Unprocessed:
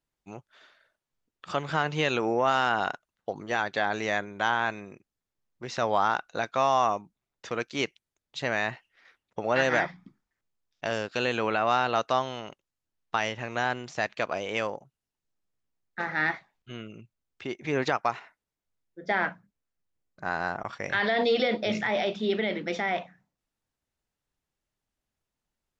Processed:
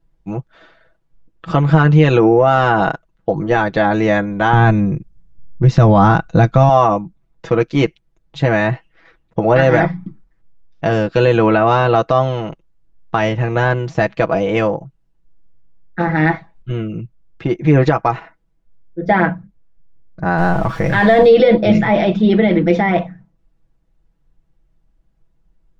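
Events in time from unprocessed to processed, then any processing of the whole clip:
0:04.53–0:06.69: bass and treble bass +13 dB, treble +4 dB
0:20.38–0:21.28: converter with a step at zero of −38.5 dBFS
whole clip: spectral tilt −4 dB per octave; comb filter 6.1 ms, depth 72%; boost into a limiter +11 dB; level −1 dB

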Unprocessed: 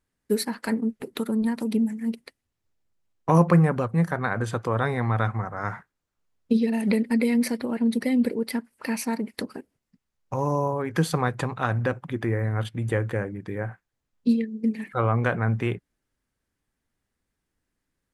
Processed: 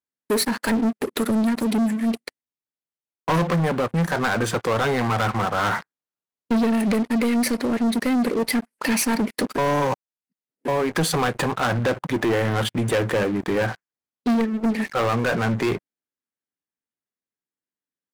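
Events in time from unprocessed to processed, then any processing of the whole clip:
0:09.58–0:10.68: reverse
0:14.28–0:14.95: parametric band 720 Hz +6.5 dB 1.3 octaves
whole clip: high-pass filter 200 Hz 12 dB per octave; speech leveller within 5 dB 0.5 s; leveller curve on the samples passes 5; level −7.5 dB

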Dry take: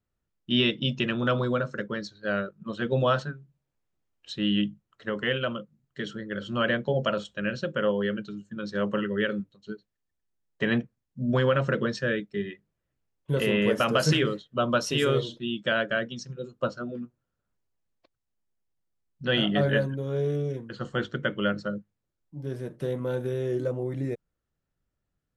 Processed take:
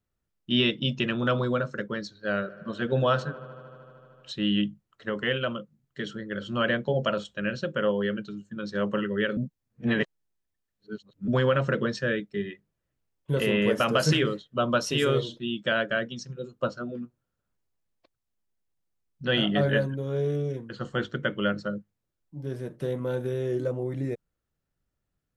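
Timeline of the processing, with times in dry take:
0:02.02–0:04.32: delay with a low-pass on its return 76 ms, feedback 85%, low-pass 2,100 Hz, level −20 dB
0:09.37–0:11.28: reverse

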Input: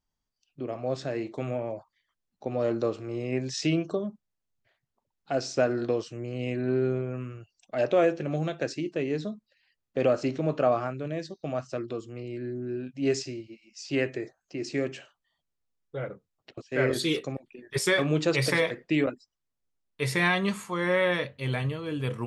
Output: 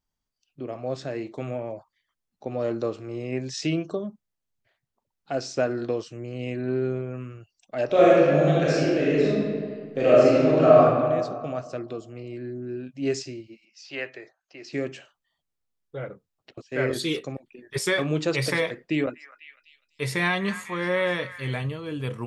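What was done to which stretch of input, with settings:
0:07.86–0:10.78: thrown reverb, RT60 1.9 s, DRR −8 dB
0:13.65–0:14.73: three-way crossover with the lows and the highs turned down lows −16 dB, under 550 Hz, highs −22 dB, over 5,600 Hz
0:18.74–0:21.58: echo through a band-pass that steps 249 ms, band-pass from 1,500 Hz, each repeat 0.7 octaves, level −10 dB

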